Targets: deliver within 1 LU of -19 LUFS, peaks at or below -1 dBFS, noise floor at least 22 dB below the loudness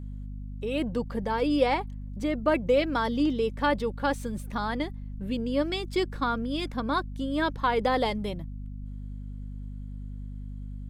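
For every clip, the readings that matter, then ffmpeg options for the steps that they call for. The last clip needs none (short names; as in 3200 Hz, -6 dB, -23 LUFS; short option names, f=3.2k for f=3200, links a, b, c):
hum 50 Hz; harmonics up to 250 Hz; hum level -35 dBFS; loudness -28.5 LUFS; peak -11.5 dBFS; loudness target -19.0 LUFS
-> -af "bandreject=f=50:t=h:w=6,bandreject=f=100:t=h:w=6,bandreject=f=150:t=h:w=6,bandreject=f=200:t=h:w=6,bandreject=f=250:t=h:w=6"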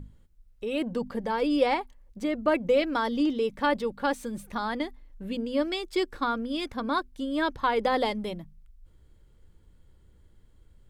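hum none; loudness -28.5 LUFS; peak -11.5 dBFS; loudness target -19.0 LUFS
-> -af "volume=9.5dB"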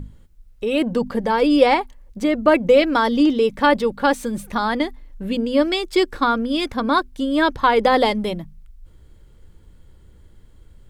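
loudness -19.0 LUFS; peak -2.0 dBFS; noise floor -49 dBFS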